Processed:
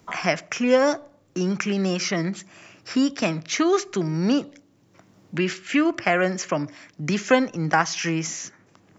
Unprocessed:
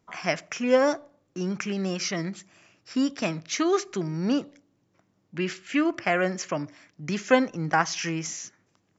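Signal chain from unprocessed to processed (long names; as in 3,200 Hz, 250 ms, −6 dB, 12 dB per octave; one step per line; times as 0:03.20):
multiband upward and downward compressor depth 40%
level +4 dB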